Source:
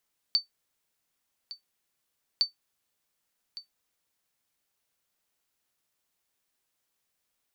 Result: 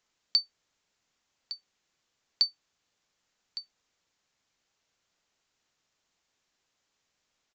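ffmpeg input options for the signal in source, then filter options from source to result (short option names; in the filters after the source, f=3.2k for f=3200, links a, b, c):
-f lavfi -i "aevalsrc='0.178*(sin(2*PI*4550*mod(t,2.06))*exp(-6.91*mod(t,2.06)/0.13)+0.15*sin(2*PI*4550*max(mod(t,2.06)-1.16,0))*exp(-6.91*max(mod(t,2.06)-1.16,0)/0.13))':d=4.12:s=44100"
-filter_complex "[0:a]asplit=2[a][b];[b]alimiter=level_in=2.5dB:limit=-24dB:level=0:latency=1,volume=-2.5dB,volume=-2.5dB[c];[a][c]amix=inputs=2:normalize=0,aresample=16000,aresample=44100"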